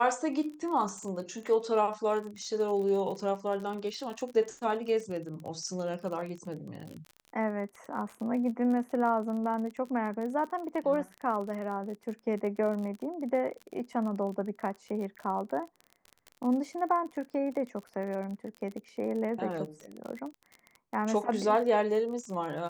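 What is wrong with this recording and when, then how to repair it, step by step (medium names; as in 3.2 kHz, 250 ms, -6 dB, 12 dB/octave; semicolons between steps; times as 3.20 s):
crackle 40 per s -37 dBFS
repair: de-click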